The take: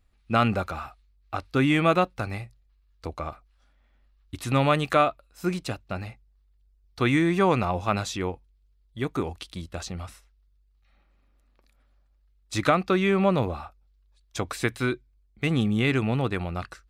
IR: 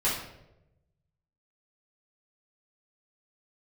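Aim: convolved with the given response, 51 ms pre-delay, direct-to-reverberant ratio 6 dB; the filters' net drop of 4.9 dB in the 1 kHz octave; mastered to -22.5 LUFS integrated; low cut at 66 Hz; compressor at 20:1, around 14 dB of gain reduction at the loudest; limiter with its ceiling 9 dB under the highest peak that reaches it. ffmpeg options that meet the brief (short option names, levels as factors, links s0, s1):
-filter_complex "[0:a]highpass=66,equalizer=f=1000:t=o:g=-7,acompressor=threshold=0.0251:ratio=20,alimiter=level_in=1.68:limit=0.0631:level=0:latency=1,volume=0.596,asplit=2[s0][s1];[1:a]atrim=start_sample=2205,adelay=51[s2];[s1][s2]afir=irnorm=-1:irlink=0,volume=0.15[s3];[s0][s3]amix=inputs=2:normalize=0,volume=7.08"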